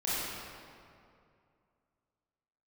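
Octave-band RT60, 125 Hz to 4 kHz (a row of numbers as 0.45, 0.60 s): 2.8, 2.6, 2.5, 2.3, 2.0, 1.5 s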